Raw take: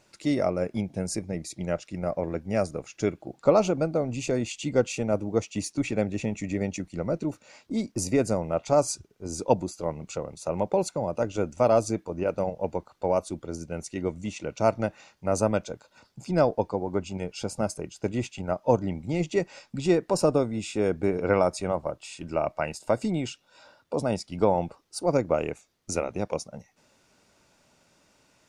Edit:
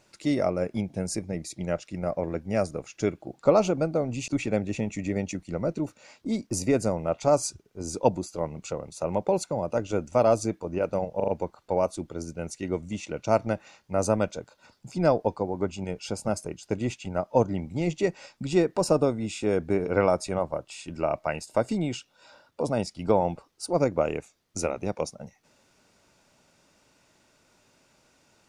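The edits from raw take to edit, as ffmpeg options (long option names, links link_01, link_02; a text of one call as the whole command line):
ffmpeg -i in.wav -filter_complex "[0:a]asplit=5[link_01][link_02][link_03][link_04][link_05];[link_01]atrim=end=4.282[link_06];[link_02]atrim=start=5.728:end=12.652[link_07];[link_03]atrim=start=12.608:end=12.652[link_08];[link_04]atrim=start=12.608:end=12.652[link_09];[link_05]atrim=start=12.608[link_10];[link_06][link_07]acrossfade=duration=0.004:curve1=hsin:curve2=hsin[link_11];[link_11][link_08]acrossfade=duration=0.004:curve1=hsin:curve2=hsin[link_12];[link_12][link_09]acrossfade=duration=0.004:curve1=hsin:curve2=hsin[link_13];[link_13][link_10]acrossfade=duration=0.004:curve1=hsin:curve2=hsin" out.wav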